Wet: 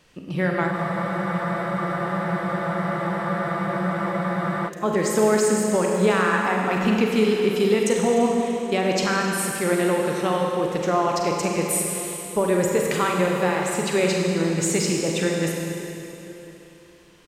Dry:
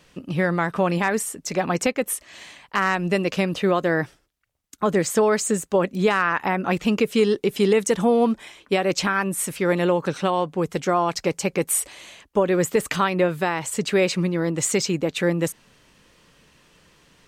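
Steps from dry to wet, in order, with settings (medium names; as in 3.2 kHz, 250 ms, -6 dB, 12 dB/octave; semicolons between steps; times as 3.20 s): echo from a far wall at 180 m, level -20 dB; Schroeder reverb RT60 2.9 s, combs from 33 ms, DRR -0.5 dB; spectral freeze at 0.74 s, 3.94 s; trim -3 dB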